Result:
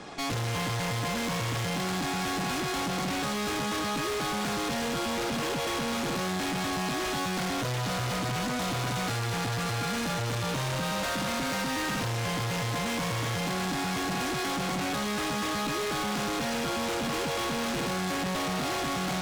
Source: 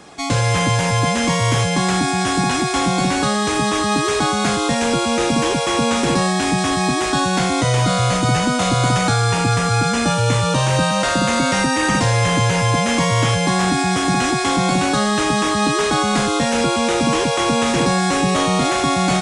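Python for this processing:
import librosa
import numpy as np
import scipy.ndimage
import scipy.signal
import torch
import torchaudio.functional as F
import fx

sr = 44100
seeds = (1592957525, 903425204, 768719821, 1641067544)

y = scipy.signal.sosfilt(scipy.signal.butter(2, 5900.0, 'lowpass', fs=sr, output='sos'), x)
y = fx.tube_stage(y, sr, drive_db=32.0, bias=0.65)
y = y * librosa.db_to_amplitude(2.5)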